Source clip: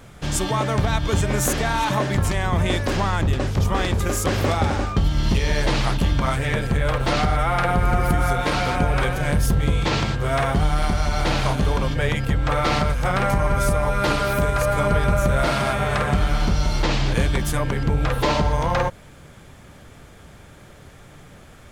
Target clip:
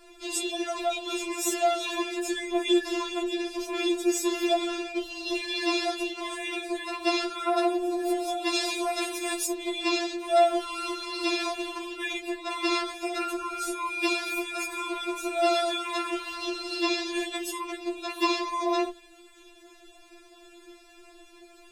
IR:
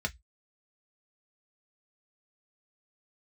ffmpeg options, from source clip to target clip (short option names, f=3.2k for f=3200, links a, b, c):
-filter_complex "[0:a]asettb=1/sr,asplit=3[a][b][c];[a]atrim=end=8.544[d];[b]atrim=start=8.54:end=9.46,asetpts=PTS-STARTPTS,afade=t=in:d=0.004:c=qsin,afade=t=out:st=0.916:d=0.004:c=qsin,highshelf=f=4.1k:g=10.5[e];[c]atrim=start=9.456[f];[d][e]acrossfade=d=0.004:c1=hsin:c2=qsin[g];[g][f]acrossfade=d=0.004:c1=qsin:c2=hsin[h];[1:a]atrim=start_sample=2205,asetrate=83790,aresample=44100[i];[h][i]afir=irnorm=-1:irlink=0,afftfilt=real='re*4*eq(mod(b,16),0)':imag='im*4*eq(mod(b,16),0)':win_size=2048:overlap=0.75"